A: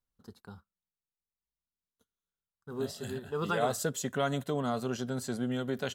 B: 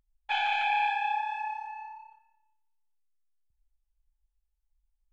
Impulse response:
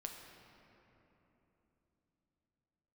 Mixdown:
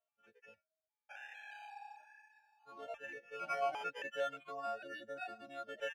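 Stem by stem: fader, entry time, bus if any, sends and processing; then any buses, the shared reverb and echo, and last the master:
−2.5 dB, 0.00 s, no send, no echo send, every partial snapped to a pitch grid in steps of 4 semitones; reverb reduction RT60 0.65 s; gain into a clipping stage and back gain 20 dB
−14.5 dB, 0.80 s, send −7 dB, echo send −20.5 dB, low-pass filter 1,800 Hz 6 dB per octave; automatic ducking −8 dB, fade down 0.95 s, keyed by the first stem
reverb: on, RT60 3.5 s, pre-delay 7 ms
echo: single-tap delay 633 ms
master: parametric band 1,600 Hz +11 dB 0.86 octaves; sample-and-hold swept by an LFO 9×, swing 60% 0.35 Hz; formant filter swept between two vowels a-e 1.1 Hz

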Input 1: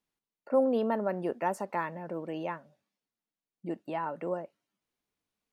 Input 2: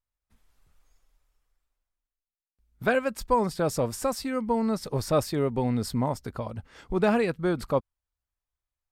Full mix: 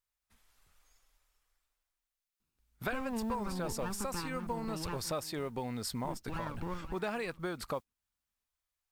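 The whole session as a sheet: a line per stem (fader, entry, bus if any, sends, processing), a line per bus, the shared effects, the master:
−0.5 dB, 2.40 s, no send, echo send −15 dB, lower of the sound and its delayed copy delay 0.76 ms; low-shelf EQ 210 Hz +11.5 dB
−1.5 dB, 0.00 s, no send, no echo send, tilt shelving filter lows −5.5 dB, about 640 Hz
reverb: not used
echo: single-tap delay 534 ms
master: noise that follows the level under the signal 31 dB; downward compressor 4 to 1, threshold −35 dBFS, peak gain reduction 15 dB

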